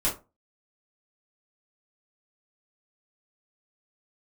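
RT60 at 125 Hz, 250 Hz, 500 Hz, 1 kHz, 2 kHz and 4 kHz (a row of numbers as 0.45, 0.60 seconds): 0.30, 0.30, 0.30, 0.25, 0.20, 0.15 seconds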